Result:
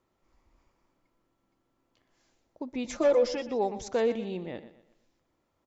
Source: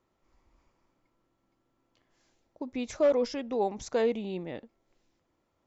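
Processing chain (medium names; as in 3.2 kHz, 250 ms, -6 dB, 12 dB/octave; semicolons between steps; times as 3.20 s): 2.84–3.49 s: comb 5.8 ms, depth 90%; feedback delay 121 ms, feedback 38%, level -14 dB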